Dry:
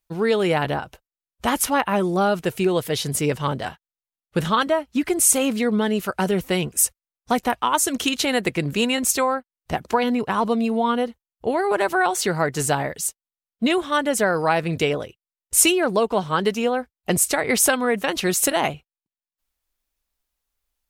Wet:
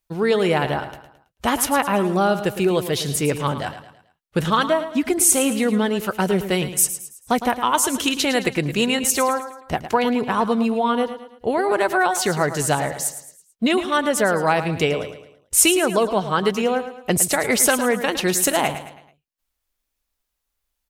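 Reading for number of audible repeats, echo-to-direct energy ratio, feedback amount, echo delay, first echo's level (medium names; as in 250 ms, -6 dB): 4, -10.5 dB, 42%, 109 ms, -11.5 dB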